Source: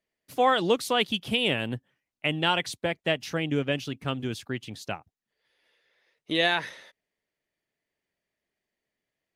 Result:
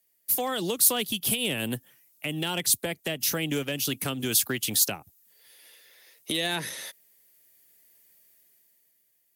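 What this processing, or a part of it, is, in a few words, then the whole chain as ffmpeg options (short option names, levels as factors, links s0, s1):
FM broadcast chain: -filter_complex "[0:a]highpass=59,dynaudnorm=f=140:g=13:m=3.16,acrossover=split=170|430[s0][s1][s2];[s0]acompressor=threshold=0.01:ratio=4[s3];[s1]acompressor=threshold=0.0282:ratio=4[s4];[s2]acompressor=threshold=0.0282:ratio=4[s5];[s3][s4][s5]amix=inputs=3:normalize=0,aemphasis=mode=production:type=50fm,alimiter=limit=0.112:level=0:latency=1:release=143,asoftclip=type=hard:threshold=0.0891,lowpass=f=15000:w=0.5412,lowpass=f=15000:w=1.3066,aemphasis=mode=production:type=50fm"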